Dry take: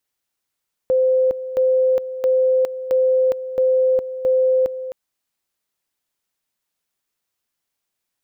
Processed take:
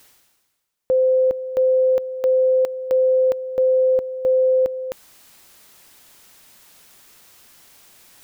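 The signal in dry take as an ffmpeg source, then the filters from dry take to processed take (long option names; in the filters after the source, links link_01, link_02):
-f lavfi -i "aevalsrc='pow(10,(-13-12.5*gte(mod(t,0.67),0.41))/20)*sin(2*PI*517*t)':duration=4.02:sample_rate=44100"
-af "areverse,acompressor=mode=upward:threshold=-26dB:ratio=2.5,areverse"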